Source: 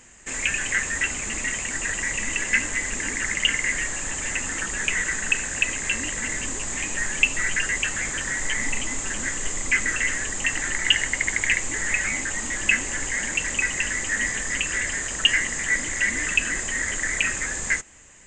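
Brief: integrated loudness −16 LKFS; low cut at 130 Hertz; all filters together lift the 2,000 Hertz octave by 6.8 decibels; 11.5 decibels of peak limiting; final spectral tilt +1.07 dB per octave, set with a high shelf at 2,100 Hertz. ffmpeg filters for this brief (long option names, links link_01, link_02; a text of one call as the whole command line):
ffmpeg -i in.wav -af "highpass=130,equalizer=frequency=2000:width_type=o:gain=5,highshelf=frequency=2100:gain=5,volume=3dB,alimiter=limit=-5dB:level=0:latency=1" out.wav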